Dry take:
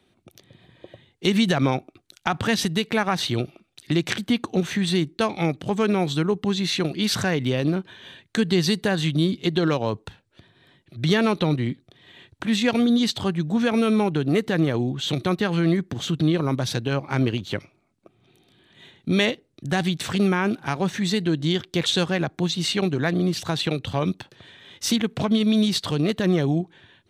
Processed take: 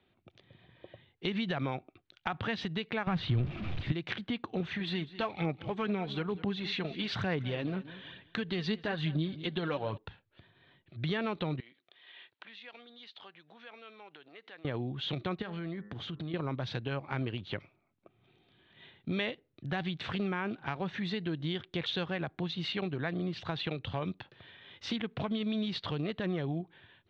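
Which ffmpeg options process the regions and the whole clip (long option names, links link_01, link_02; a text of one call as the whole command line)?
ffmpeg -i in.wav -filter_complex "[0:a]asettb=1/sr,asplit=3[link_01][link_02][link_03];[link_01]atrim=end=3.074[link_04];[link_02]atrim=start=3.07:end=3.92,asetpts=PTS-STARTPTS,afade=type=in:duration=0.004:curve=qsin,afade=type=out:start_time=0.846:duration=0.004:curve=qsin,aeval=exprs='val(0)+0.5*0.0422*sgn(val(0))':channel_layout=same,bass=frequency=250:gain=14,treble=frequency=4000:gain=-4,bandreject=frequency=860:width=18[link_05];[link_03]atrim=start=3.916[link_06];[link_04][link_05]acrossfade=duration=0.004:curve1=hsin:curve2=qsin[link_07];[link_07][link_06]acrossfade=duration=0.004:curve1=qsin:curve2=hsin,asettb=1/sr,asplit=3[link_08][link_09][link_10];[link_08]atrim=end=4.604[link_11];[link_09]atrim=start=4.6:end=9.98,asetpts=PTS-STARTPTS,afade=type=in:duration=0.004:curve=qsin,afade=type=out:start_time=5.376:duration=0.004:curve=qsin,aphaser=in_gain=1:out_gain=1:delay=4.7:decay=0.46:speed=1.1:type=sinusoidal,aecho=1:1:199|398|597:0.119|0.038|0.0122,atrim=end_sample=237258[link_12];[link_10]atrim=start=9.976[link_13];[link_11][link_12]acrossfade=duration=0.004:curve1=hsin:curve2=qsin[link_14];[link_14][link_13]acrossfade=duration=0.004:curve1=qsin:curve2=hsin,asettb=1/sr,asplit=3[link_15][link_16][link_17];[link_15]atrim=end=11.604[link_18];[link_16]atrim=start=11.6:end=14.65,asetpts=PTS-STARTPTS,afade=type=in:duration=0.004:curve=qsin,afade=type=out:start_time=3.046:duration=0.004:curve=qsin,tiltshelf=frequency=1300:gain=-4.5,acompressor=threshold=-39dB:ratio=5:attack=3.2:release=140:knee=1:detection=peak,highpass=450,lowpass=6000[link_19];[link_17]atrim=start=14.646[link_20];[link_18][link_19]acrossfade=duration=0.004:curve1=hsin:curve2=qsin[link_21];[link_21][link_20]acrossfade=duration=0.004:curve1=qsin:curve2=hsin,asettb=1/sr,asplit=3[link_22][link_23][link_24];[link_22]atrim=end=15.424[link_25];[link_23]atrim=start=15.42:end=16.34,asetpts=PTS-STARTPTS,afade=type=in:duration=0.004:curve=qsin,afade=type=out:start_time=0.916:duration=0.004:curve=qsin,bandreject=frequency=2700:width=23,bandreject=frequency=103.3:width_type=h:width=4,bandreject=frequency=206.6:width_type=h:width=4,bandreject=frequency=309.9:width_type=h:width=4,bandreject=frequency=413.2:width_type=h:width=4,bandreject=frequency=516.5:width_type=h:width=4,bandreject=frequency=619.8:width_type=h:width=4,bandreject=frequency=723.1:width_type=h:width=4,bandreject=frequency=826.4:width_type=h:width=4,bandreject=frequency=929.7:width_type=h:width=4,bandreject=frequency=1033:width_type=h:width=4,bandreject=frequency=1136.3:width_type=h:width=4,bandreject=frequency=1239.6:width_type=h:width=4,bandreject=frequency=1342.9:width_type=h:width=4,bandreject=frequency=1446.2:width_type=h:width=4,bandreject=frequency=1549.5:width_type=h:width=4,bandreject=frequency=1652.8:width_type=h:width=4,bandreject=frequency=1756.1:width_type=h:width=4,bandreject=frequency=1859.4:width_type=h:width=4,bandreject=frequency=1962.7:width_type=h:width=4,acompressor=threshold=-31dB:ratio=2.5:attack=3.2:release=140:knee=1:detection=peak[link_26];[link_24]atrim=start=16.336[link_27];[link_25][link_26]acrossfade=duration=0.004:curve1=hsin:curve2=qsin[link_28];[link_28][link_27]acrossfade=duration=0.004:curve1=qsin:curve2=hsin,lowpass=frequency=3600:width=0.5412,lowpass=frequency=3600:width=1.3066,equalizer=frequency=260:width=0.83:gain=-4,acompressor=threshold=-28dB:ratio=2,volume=-5.5dB" out.wav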